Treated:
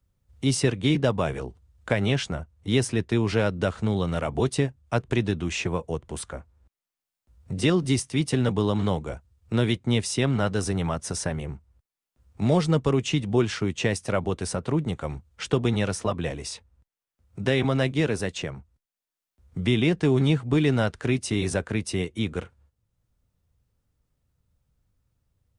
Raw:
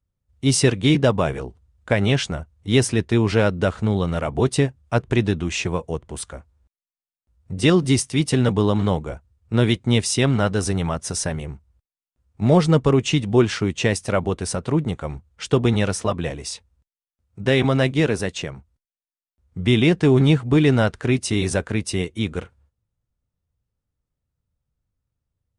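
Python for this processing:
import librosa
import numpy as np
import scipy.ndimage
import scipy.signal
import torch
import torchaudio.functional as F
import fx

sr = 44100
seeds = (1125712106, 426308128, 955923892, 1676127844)

y = fx.band_squash(x, sr, depth_pct=40)
y = y * librosa.db_to_amplitude(-5.0)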